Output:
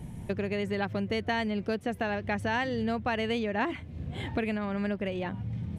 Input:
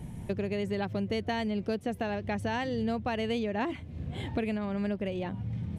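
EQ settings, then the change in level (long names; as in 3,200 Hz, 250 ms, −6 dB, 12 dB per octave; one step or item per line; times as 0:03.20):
dynamic equaliser 1,600 Hz, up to +6 dB, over −49 dBFS, Q 0.88
0.0 dB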